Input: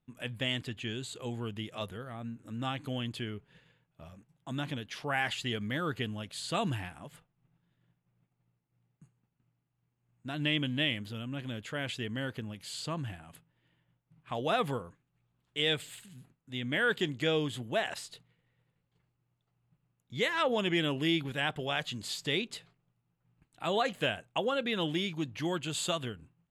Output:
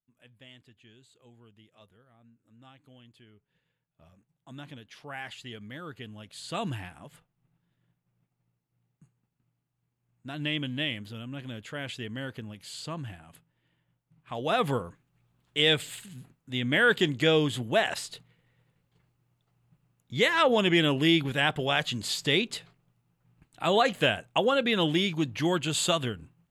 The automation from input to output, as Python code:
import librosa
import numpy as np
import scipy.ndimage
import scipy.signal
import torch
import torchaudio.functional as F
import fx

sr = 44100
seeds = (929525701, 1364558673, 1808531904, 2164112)

y = fx.gain(x, sr, db=fx.line((3.25, -19.0), (4.07, -8.0), (6.0, -8.0), (6.63, -0.5), (14.32, -0.5), (14.76, 6.5)))